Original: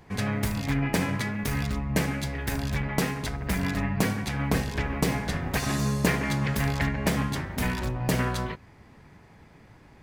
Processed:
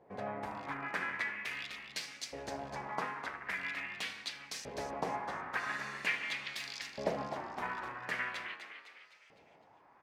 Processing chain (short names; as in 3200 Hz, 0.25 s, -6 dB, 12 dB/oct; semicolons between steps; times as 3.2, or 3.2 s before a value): LFO band-pass saw up 0.43 Hz 530–6200 Hz; frequency-shifting echo 0.254 s, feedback 48%, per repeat +90 Hz, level -9 dB